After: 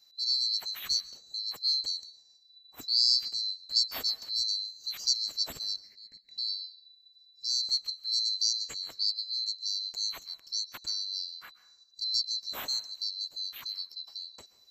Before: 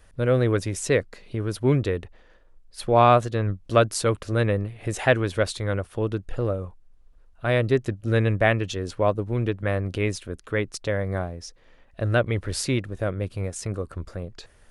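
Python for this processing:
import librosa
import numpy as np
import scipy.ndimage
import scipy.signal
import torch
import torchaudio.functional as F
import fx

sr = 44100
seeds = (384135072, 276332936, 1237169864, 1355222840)

y = fx.band_swap(x, sr, width_hz=4000)
y = fx.curve_eq(y, sr, hz=(130.0, 200.0, 1300.0, 2000.0, 3500.0), db=(0, 8, -13, 12, -17), at=(5.76, 6.38))
y = fx.rev_plate(y, sr, seeds[0], rt60_s=0.62, hf_ratio=0.6, predelay_ms=115, drr_db=16.5)
y = F.gain(torch.from_numpy(y), -9.0).numpy()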